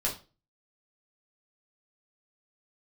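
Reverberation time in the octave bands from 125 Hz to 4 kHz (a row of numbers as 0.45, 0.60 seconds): 0.45, 0.40, 0.35, 0.30, 0.30, 0.30 seconds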